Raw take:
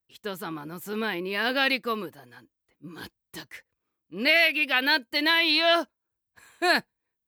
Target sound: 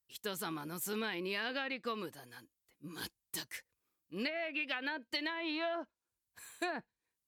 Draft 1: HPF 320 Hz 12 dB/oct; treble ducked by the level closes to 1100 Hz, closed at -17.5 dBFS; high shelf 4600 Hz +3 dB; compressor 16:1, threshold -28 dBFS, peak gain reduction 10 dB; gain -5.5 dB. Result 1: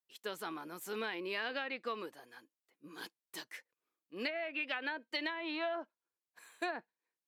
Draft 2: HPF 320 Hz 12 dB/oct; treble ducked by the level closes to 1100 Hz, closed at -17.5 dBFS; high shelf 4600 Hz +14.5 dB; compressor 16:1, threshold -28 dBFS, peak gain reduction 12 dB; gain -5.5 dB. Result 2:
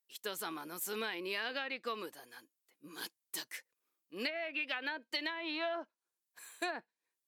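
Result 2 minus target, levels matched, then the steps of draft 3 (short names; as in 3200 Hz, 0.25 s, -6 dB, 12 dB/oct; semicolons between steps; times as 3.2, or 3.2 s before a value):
250 Hz band -4.0 dB
treble ducked by the level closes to 1100 Hz, closed at -17.5 dBFS; high shelf 4600 Hz +14.5 dB; compressor 16:1, threshold -28 dBFS, peak gain reduction 11 dB; gain -5.5 dB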